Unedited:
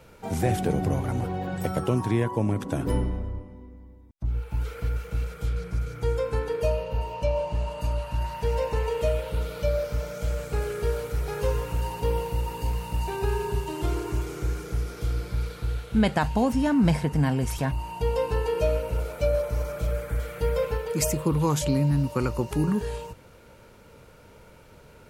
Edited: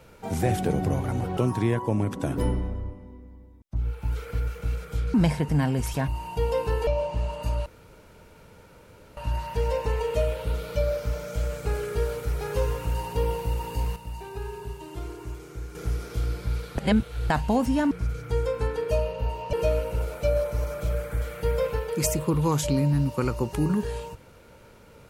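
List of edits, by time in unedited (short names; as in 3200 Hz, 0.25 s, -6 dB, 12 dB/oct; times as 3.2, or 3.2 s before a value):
1.37–1.86 cut
5.63–7.25 swap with 16.78–18.51
8.04 insert room tone 1.51 s
12.83–14.62 gain -8.5 dB
15.65–16.17 reverse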